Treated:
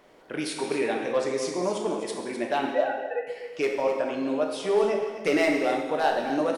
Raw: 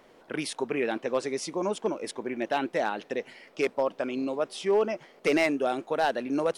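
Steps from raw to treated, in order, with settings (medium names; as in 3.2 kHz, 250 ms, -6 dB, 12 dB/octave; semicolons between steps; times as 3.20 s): 2.71–3.27 s: formants replaced by sine waves; delay 256 ms -11 dB; gated-style reverb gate 390 ms falling, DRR 0.5 dB; trim -1 dB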